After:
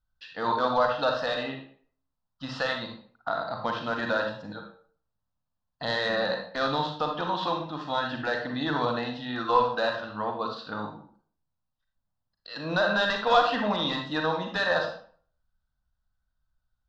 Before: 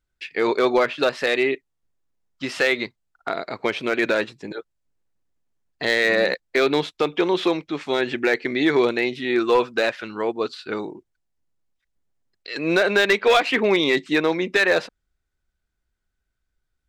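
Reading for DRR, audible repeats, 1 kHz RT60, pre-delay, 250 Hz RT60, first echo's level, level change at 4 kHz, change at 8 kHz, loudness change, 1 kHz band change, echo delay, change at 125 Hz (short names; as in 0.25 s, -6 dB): 2.0 dB, none, 0.50 s, 36 ms, 0.45 s, none, -5.0 dB, under -10 dB, -6.5 dB, +0.5 dB, none, -0.5 dB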